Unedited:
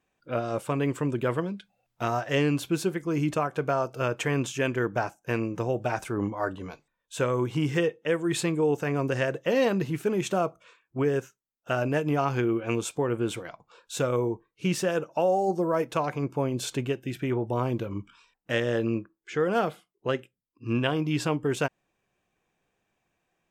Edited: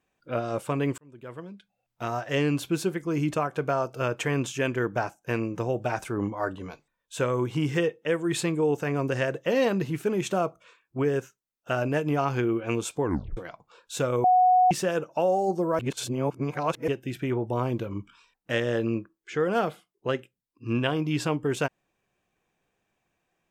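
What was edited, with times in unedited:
0.98–2.54 s: fade in
13.03 s: tape stop 0.34 s
14.24–14.71 s: bleep 735 Hz -15.5 dBFS
15.79–16.88 s: reverse

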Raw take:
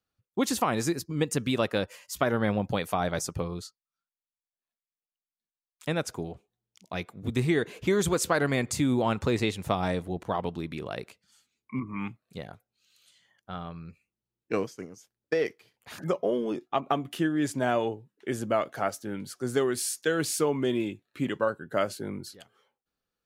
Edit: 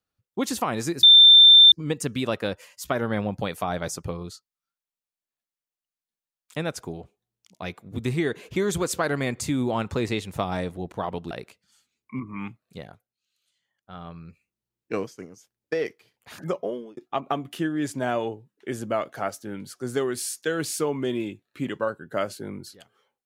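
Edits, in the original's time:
1.03 s: add tone 3.57 kHz -8 dBFS 0.69 s
10.62–10.91 s: delete
12.43–13.69 s: dip -12.5 dB, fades 0.33 s
16.18–16.57 s: fade out

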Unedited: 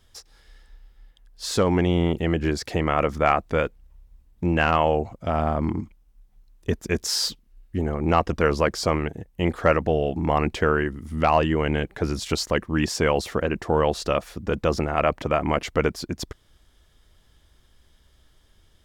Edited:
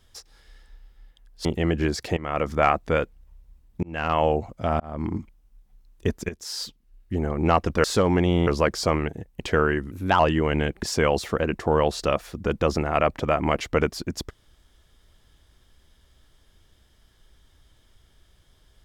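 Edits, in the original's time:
1.45–2.08 s: move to 8.47 s
2.80–3.29 s: fade in equal-power, from -17.5 dB
4.46–4.88 s: fade in
5.43–5.79 s: fade in
6.92–7.90 s: fade in, from -15.5 dB
9.40–10.49 s: delete
11.00–11.34 s: speed 119%
11.97–12.85 s: delete

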